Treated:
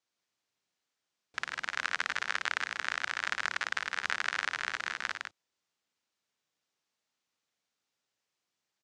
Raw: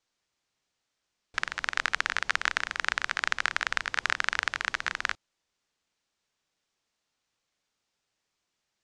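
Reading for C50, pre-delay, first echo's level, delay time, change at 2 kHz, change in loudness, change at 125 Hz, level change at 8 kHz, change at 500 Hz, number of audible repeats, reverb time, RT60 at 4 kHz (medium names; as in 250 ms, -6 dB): no reverb, no reverb, -6.5 dB, 57 ms, -4.0 dB, -4.0 dB, no reading, -4.0 dB, -4.0 dB, 2, no reverb, no reverb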